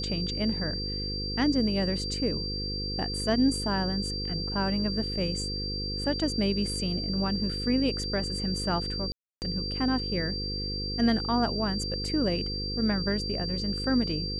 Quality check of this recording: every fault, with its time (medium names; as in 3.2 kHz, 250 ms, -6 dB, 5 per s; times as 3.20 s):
buzz 50 Hz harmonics 10 -35 dBFS
whine 4.7 kHz -33 dBFS
9.12–9.42 s: dropout 299 ms